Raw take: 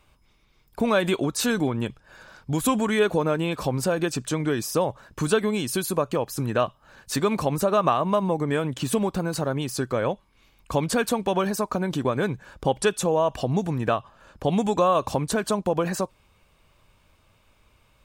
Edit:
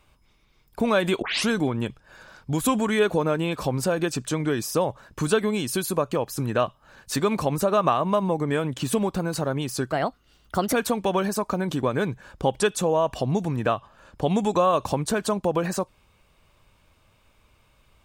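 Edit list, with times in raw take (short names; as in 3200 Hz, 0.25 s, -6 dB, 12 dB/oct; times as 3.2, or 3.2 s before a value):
1.22 tape start 0.27 s
9.92–10.95 speed 127%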